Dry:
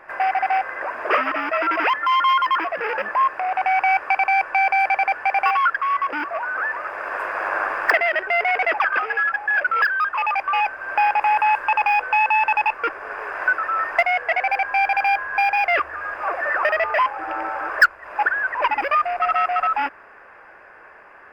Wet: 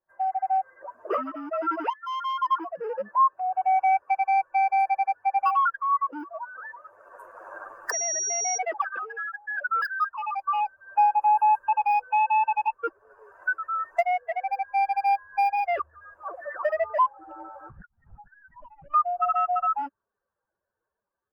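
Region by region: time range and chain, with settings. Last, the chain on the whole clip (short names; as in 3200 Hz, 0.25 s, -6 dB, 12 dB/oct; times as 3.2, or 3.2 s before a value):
1.9–2.42 HPF 1300 Hz + high shelf 11000 Hz -5.5 dB
7.91–8.57 compressor 2:1, threshold -22 dBFS + whine 5700 Hz -24 dBFS
17.7–18.94 bell 400 Hz -13.5 dB 0.2 oct + compressor 4:1, threshold -32 dBFS + LPC vocoder at 8 kHz pitch kept
whole clip: per-bin expansion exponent 2; AGC gain up to 4 dB; band shelf 2700 Hz -11 dB; gain -3.5 dB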